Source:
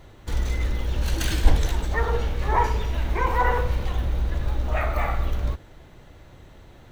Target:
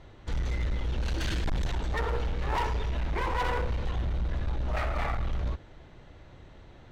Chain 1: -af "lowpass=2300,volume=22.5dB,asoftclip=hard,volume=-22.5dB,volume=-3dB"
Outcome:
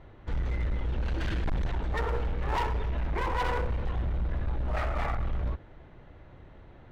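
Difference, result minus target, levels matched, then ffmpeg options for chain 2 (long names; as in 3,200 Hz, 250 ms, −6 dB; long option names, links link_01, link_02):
4,000 Hz band −4.0 dB
-af "lowpass=5300,volume=22.5dB,asoftclip=hard,volume=-22.5dB,volume=-3dB"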